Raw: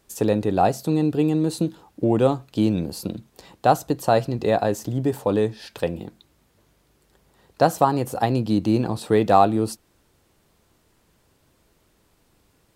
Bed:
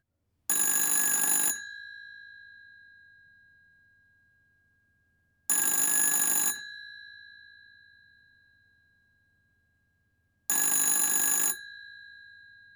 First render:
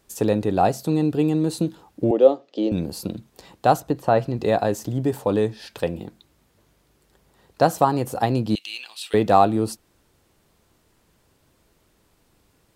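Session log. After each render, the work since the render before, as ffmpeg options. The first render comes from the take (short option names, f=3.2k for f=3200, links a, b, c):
-filter_complex "[0:a]asettb=1/sr,asplit=3[a][b][c];[a]atrim=end=2.114[d];[b]atrim=start=2.11:end=2.72,asetpts=PTS-STARTPTS,afade=t=in:d=0.004:c=qsin,afade=t=out:st=0.606:d=0.004:c=qsin,highpass=f=280:w=0.5412,highpass=f=280:w=1.3066,equalizer=f=540:t=q:w=4:g=8,equalizer=f=1k:t=q:w=4:g=-9,equalizer=f=1.5k:t=q:w=4:g=-10,equalizer=f=2.4k:t=q:w=4:g=-7,equalizer=f=4.1k:t=q:w=4:g=-5,lowpass=f=5.1k:w=0.5412,lowpass=f=5.1k:w=1.3066[e];[c]atrim=start=2.716[f];[d][e]acrossfade=d=0.004:c1=hsin:c2=qsin[g];[g][f]acrossfade=d=0.004:c1=qsin:c2=hsin,asettb=1/sr,asplit=3[h][i][j];[h]atrim=end=3.804[k];[i]atrim=start=3.8:end=4.39,asetpts=PTS-STARTPTS,afade=t=in:d=0.004:c=qsin,afade=t=out:st=0.586:d=0.004:c=qsin,acrossover=split=3000[l][m];[m]acompressor=threshold=-50dB:ratio=4:attack=1:release=60[n];[l][n]amix=inputs=2:normalize=0[o];[j]atrim=start=4.386[p];[k][o]acrossfade=d=0.004:c1=hsin:c2=qsin[q];[q][p]acrossfade=d=0.004:c1=qsin:c2=hsin,asettb=1/sr,asplit=3[r][s][t];[r]atrim=end=8.554[u];[s]atrim=start=8.55:end=9.14,asetpts=PTS-STARTPTS,afade=t=in:d=0.004:c=qsin,afade=t=out:st=0.586:d=0.004:c=qsin,highpass=f=2.8k:t=q:w=3.8[v];[t]atrim=start=9.136[w];[u][v]acrossfade=d=0.004:c1=hsin:c2=qsin[x];[x][w]acrossfade=d=0.004:c1=qsin:c2=hsin"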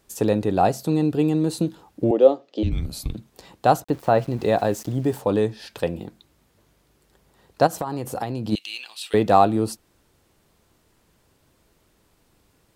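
-filter_complex "[0:a]asettb=1/sr,asplit=3[a][b][c];[a]atrim=end=2.634[d];[b]atrim=start=2.63:end=3.15,asetpts=PTS-STARTPTS,afade=t=in:d=0.004:c=qsin,afade=t=out:st=0.516:d=0.004:c=qsin,afreqshift=-240[e];[c]atrim=start=3.146[f];[d][e]acrossfade=d=0.004:c1=hsin:c2=qsin[g];[g][f]acrossfade=d=0.004:c1=qsin:c2=hsin,asettb=1/sr,asplit=3[h][i][j];[h]atrim=end=3.844[k];[i]atrim=start=3.84:end=5.21,asetpts=PTS-STARTPTS,afade=t=in:d=0.004:c=qsin,afade=t=out:st=1.366:d=0.004:c=qsin,aeval=exprs='val(0)*gte(abs(val(0)),0.00841)':c=same[l];[j]atrim=start=5.206[m];[k][l]acrossfade=d=0.004:c1=hsin:c2=qsin[n];[n][m]acrossfade=d=0.004:c1=qsin:c2=hsin,asplit=3[o][p][q];[o]afade=t=out:st=7.66:d=0.02[r];[p]acompressor=threshold=-22dB:ratio=12:attack=3.2:release=140:knee=1:detection=peak,afade=t=in:st=7.66:d=0.02,afade=t=out:st=8.51:d=0.02[s];[q]afade=t=in:st=8.51:d=0.02[t];[r][s][t]amix=inputs=3:normalize=0"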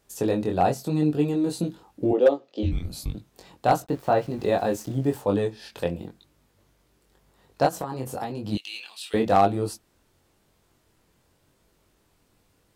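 -af "flanger=delay=20:depth=3:speed=0.94,asoftclip=type=hard:threshold=-9.5dB"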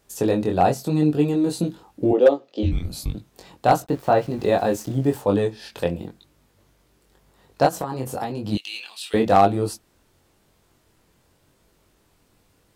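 -af "volume=3.5dB"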